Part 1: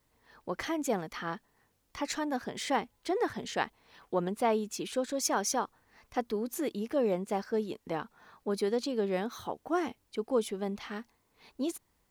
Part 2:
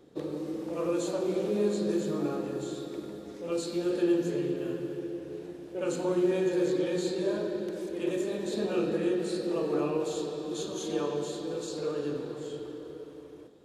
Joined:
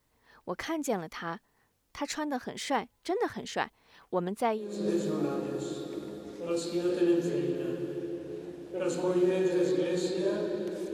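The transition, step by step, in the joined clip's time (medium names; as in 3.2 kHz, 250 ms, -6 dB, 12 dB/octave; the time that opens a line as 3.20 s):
part 1
4.67 s: go over to part 2 from 1.68 s, crossfade 0.42 s quadratic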